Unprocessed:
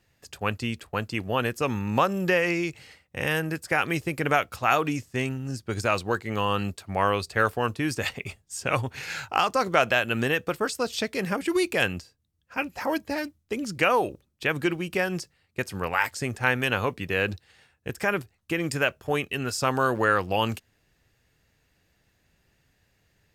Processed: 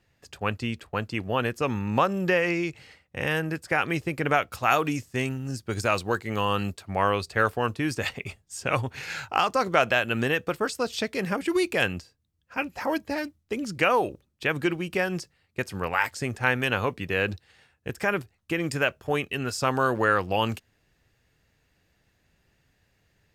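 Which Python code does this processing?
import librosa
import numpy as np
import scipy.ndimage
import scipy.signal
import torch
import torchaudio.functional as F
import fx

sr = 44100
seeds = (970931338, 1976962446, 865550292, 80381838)

y = fx.high_shelf(x, sr, hz=6300.0, db=fx.steps((0.0, -8.0), (4.51, 2.0), (6.72, -4.0)))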